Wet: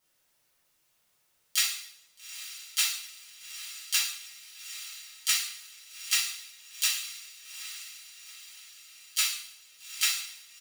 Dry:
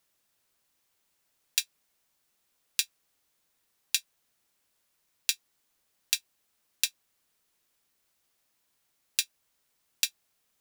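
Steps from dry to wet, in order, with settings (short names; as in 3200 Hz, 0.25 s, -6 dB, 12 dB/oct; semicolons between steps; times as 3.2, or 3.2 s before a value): diffused feedback echo 0.837 s, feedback 50%, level -11.5 dB; harmoniser -12 st -11 dB, -4 st -7 dB, +3 st -3 dB; two-slope reverb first 0.63 s, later 1.6 s, from -25 dB, DRR -7.5 dB; gain -6.5 dB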